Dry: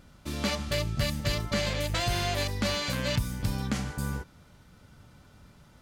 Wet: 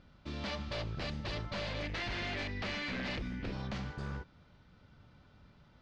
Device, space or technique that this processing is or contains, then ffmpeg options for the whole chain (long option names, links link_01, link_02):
synthesiser wavefolder: -filter_complex "[0:a]asettb=1/sr,asplit=3[link_01][link_02][link_03];[link_01]atrim=end=1.824[link_04];[link_02]atrim=start=1.82:end=3.53,asetpts=PTS-STARTPTS,afade=type=in:duration=0.004:curve=qsin,afade=type=out:start_time=1.706:duration=0.004:curve=qsin,equalizer=frequency=125:width_type=o:width=1:gain=-5,equalizer=frequency=250:width_type=o:width=1:gain=9,equalizer=frequency=500:width_type=o:width=1:gain=-4,equalizer=frequency=1000:width_type=o:width=1:gain=-7,equalizer=frequency=2000:width_type=o:width=1:gain=10,equalizer=frequency=4000:width_type=o:width=1:gain=-3,equalizer=frequency=8000:width_type=o:width=1:gain=-6[link_05];[link_03]atrim=start=3.526[link_06];[link_04][link_05]acrossfade=duration=0.004:curve1=hsin:curve2=qsin[link_07];[link_07][link_06]acrossfade=duration=0.004:curve1=qsin:curve2=hsin,aeval=exprs='0.0501*(abs(mod(val(0)/0.0501+3,4)-2)-1)':channel_layout=same,lowpass=frequency=4700:width=0.5412,lowpass=frequency=4700:width=1.3066,volume=-6dB"